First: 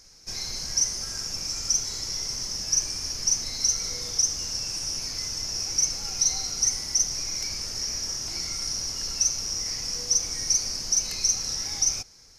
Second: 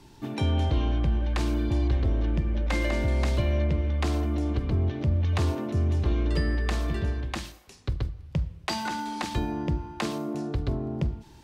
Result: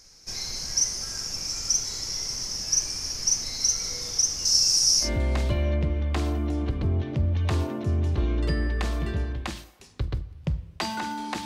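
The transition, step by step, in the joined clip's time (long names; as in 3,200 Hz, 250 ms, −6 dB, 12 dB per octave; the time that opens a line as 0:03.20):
first
0:04.45–0:05.10: high shelf with overshoot 3,700 Hz +8.5 dB, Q 1.5
0:05.05: continue with second from 0:02.93, crossfade 0.10 s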